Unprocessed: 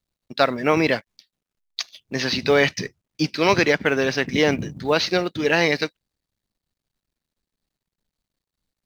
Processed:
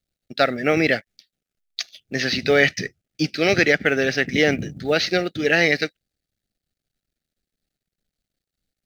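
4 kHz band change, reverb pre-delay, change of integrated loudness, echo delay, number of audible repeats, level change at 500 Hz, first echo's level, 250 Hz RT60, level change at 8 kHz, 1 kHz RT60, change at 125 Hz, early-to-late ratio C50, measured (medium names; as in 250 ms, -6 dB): 0.0 dB, no reverb, +1.0 dB, no echo, no echo, 0.0 dB, no echo, no reverb, no reading, no reverb, 0.0 dB, no reverb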